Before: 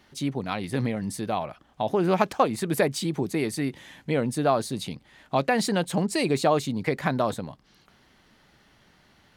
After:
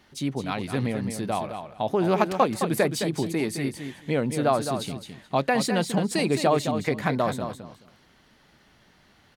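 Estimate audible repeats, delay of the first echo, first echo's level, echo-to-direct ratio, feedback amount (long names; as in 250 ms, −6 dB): 2, 214 ms, −8.0 dB, −8.0 dB, 18%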